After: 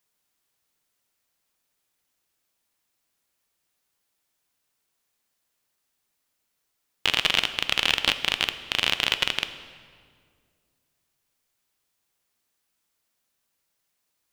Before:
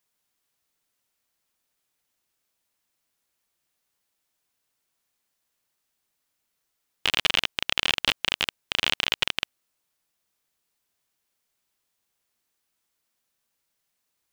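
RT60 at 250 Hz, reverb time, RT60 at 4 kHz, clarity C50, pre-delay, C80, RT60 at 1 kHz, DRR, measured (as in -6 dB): 2.5 s, 2.0 s, 1.4 s, 12.0 dB, 4 ms, 13.0 dB, 1.8 s, 10.0 dB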